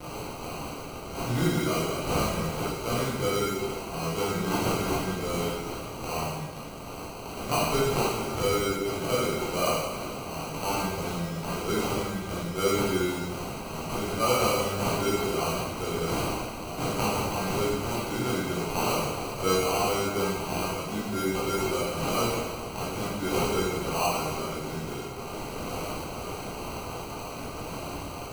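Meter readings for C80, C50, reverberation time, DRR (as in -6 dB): 1.5 dB, -1.5 dB, 1.3 s, -9.0 dB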